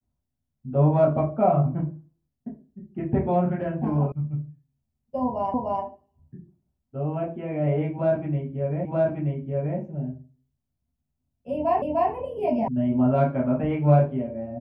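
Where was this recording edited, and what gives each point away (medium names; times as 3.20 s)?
4.12 s: sound stops dead
5.54 s: repeat of the last 0.3 s
8.85 s: repeat of the last 0.93 s
11.82 s: repeat of the last 0.3 s
12.68 s: sound stops dead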